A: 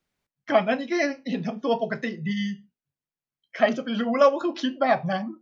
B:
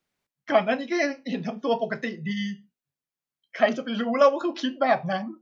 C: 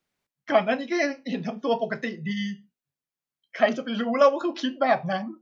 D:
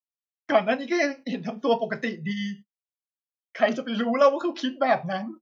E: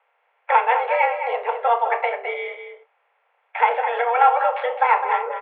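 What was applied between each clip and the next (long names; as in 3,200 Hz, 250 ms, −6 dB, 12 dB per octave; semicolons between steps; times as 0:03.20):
low-shelf EQ 110 Hz −8.5 dB
no processing that can be heard
noise gate −41 dBFS, range −40 dB; amplitude modulation by smooth noise, depth 60%; level +3 dB
compressor on every frequency bin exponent 0.6; slap from a distant wall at 36 metres, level −8 dB; single-sideband voice off tune +240 Hz 220–2,500 Hz; level +1.5 dB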